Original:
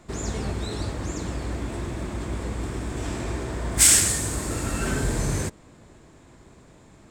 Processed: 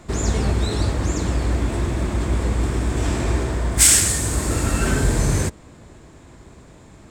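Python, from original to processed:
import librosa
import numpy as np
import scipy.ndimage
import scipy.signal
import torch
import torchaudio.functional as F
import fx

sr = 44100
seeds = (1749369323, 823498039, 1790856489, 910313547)

p1 = fx.rider(x, sr, range_db=5, speed_s=0.5)
p2 = x + F.gain(torch.from_numpy(p1), -2.0).numpy()
p3 = fx.peak_eq(p2, sr, hz=65.0, db=4.5, octaves=1.1)
y = F.gain(torch.from_numpy(p3), -1.0).numpy()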